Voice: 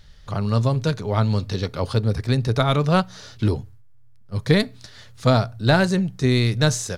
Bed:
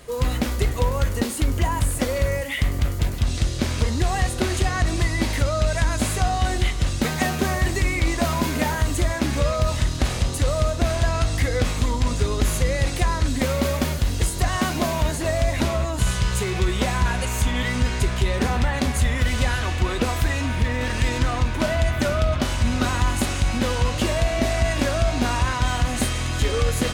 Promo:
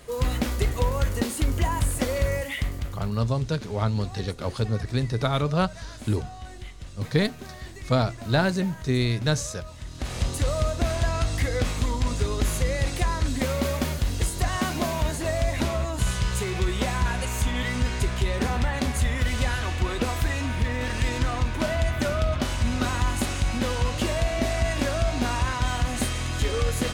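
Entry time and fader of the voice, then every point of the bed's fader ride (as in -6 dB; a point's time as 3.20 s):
2.65 s, -5.0 dB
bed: 2.44 s -2.5 dB
3.36 s -18.5 dB
9.78 s -18.5 dB
10.23 s -3.5 dB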